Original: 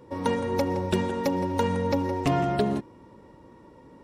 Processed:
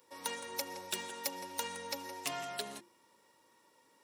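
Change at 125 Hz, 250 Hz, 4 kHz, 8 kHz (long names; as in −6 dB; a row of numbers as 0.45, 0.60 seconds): −30.5, −24.5, −1.5, +4.5 decibels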